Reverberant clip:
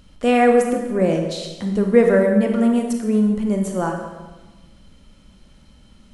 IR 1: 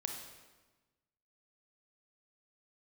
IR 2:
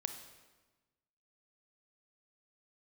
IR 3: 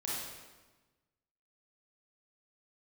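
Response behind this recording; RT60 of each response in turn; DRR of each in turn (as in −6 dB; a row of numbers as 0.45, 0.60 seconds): 1; 1.2, 1.2, 1.2 seconds; 2.5, 7.0, −6.5 decibels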